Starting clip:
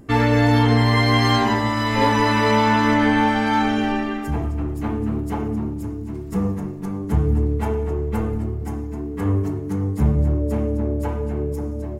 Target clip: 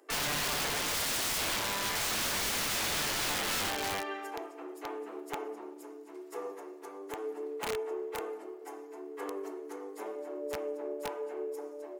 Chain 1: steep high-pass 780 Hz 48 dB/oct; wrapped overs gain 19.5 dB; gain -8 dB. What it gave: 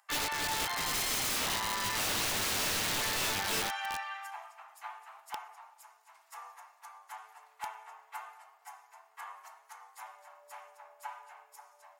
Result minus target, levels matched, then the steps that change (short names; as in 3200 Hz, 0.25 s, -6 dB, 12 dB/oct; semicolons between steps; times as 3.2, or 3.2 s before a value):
250 Hz band -7.5 dB
change: steep high-pass 350 Hz 48 dB/oct